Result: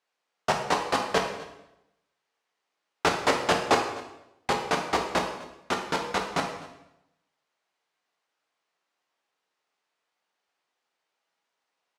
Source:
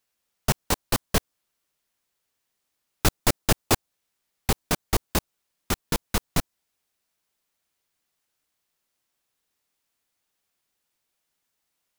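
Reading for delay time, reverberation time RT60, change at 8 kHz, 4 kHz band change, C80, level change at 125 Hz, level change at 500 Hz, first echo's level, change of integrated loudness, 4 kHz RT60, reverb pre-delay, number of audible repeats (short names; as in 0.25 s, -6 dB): 0.254 s, 0.90 s, -8.5 dB, -1.0 dB, 8.0 dB, -11.0 dB, +3.5 dB, -20.0 dB, -1.0 dB, 0.80 s, 8 ms, 1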